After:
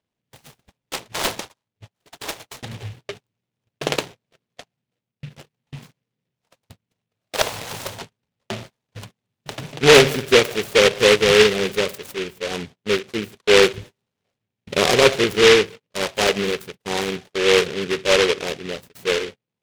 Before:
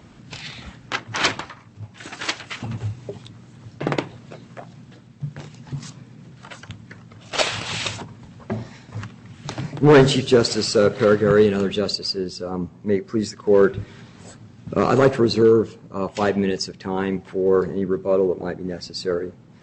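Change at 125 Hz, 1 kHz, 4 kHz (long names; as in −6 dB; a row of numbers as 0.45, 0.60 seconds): −6.0, +1.0, +6.5 decibels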